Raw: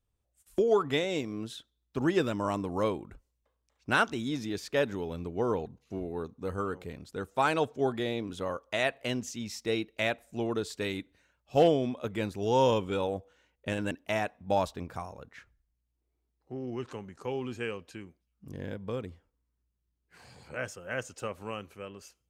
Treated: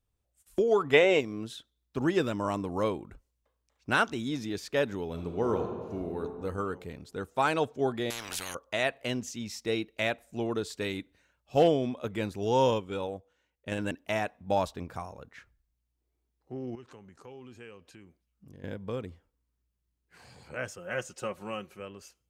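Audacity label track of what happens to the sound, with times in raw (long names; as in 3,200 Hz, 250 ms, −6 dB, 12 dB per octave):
0.940000	1.200000	gain on a spectral selection 350–3,200 Hz +10 dB
5.060000	6.210000	thrown reverb, RT60 1.7 s, DRR 3.5 dB
8.100000	8.550000	every bin compressed towards the loudest bin 10 to 1
12.660000	13.720000	expander for the loud parts, over −38 dBFS
16.750000	18.640000	downward compressor 2 to 1, threshold −54 dBFS
20.780000	21.800000	comb filter 5.5 ms, depth 56%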